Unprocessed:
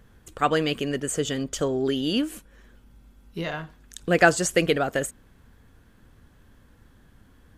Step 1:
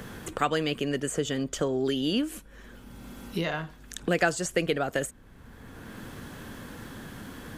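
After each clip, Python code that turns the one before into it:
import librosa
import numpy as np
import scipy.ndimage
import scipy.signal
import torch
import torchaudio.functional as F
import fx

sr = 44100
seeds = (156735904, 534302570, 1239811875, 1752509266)

y = fx.band_squash(x, sr, depth_pct=70)
y = y * librosa.db_to_amplitude(-2.5)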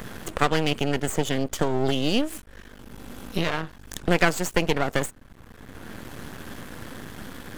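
y = np.maximum(x, 0.0)
y = y * librosa.db_to_amplitude(7.0)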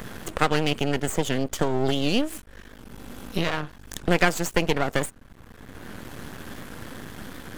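y = fx.record_warp(x, sr, rpm=78.0, depth_cents=100.0)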